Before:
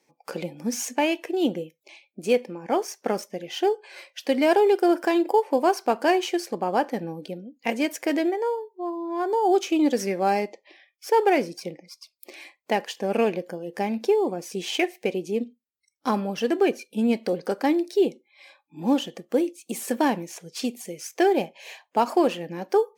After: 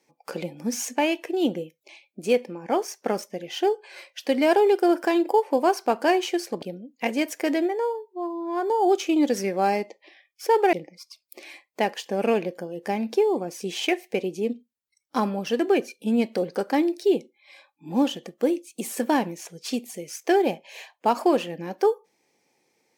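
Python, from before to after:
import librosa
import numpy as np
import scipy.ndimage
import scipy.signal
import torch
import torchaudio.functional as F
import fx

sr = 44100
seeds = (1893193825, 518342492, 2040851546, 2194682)

y = fx.edit(x, sr, fx.cut(start_s=6.62, length_s=0.63),
    fx.cut(start_s=11.36, length_s=0.28), tone=tone)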